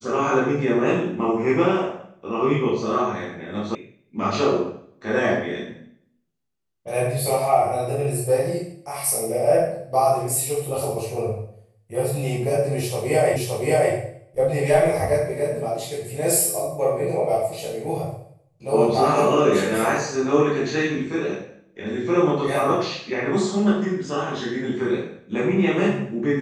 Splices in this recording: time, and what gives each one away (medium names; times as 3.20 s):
3.75 s: sound stops dead
13.36 s: repeat of the last 0.57 s